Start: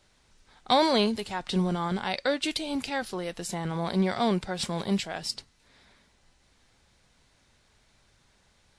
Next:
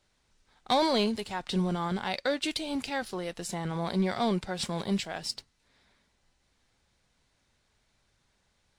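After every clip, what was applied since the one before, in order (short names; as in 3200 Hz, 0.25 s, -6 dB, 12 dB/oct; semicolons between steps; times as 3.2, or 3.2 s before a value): sample leveller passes 1; gain -5.5 dB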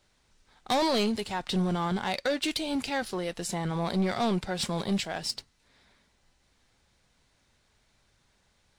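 soft clip -24.5 dBFS, distortion -13 dB; gain +3.5 dB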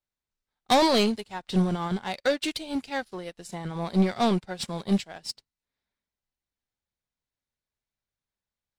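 upward expander 2.5:1, over -45 dBFS; gain +7 dB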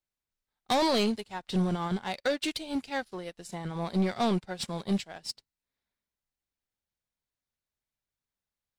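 limiter -19 dBFS, peak gain reduction 4.5 dB; gain -2 dB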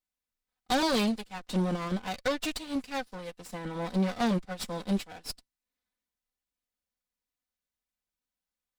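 minimum comb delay 4 ms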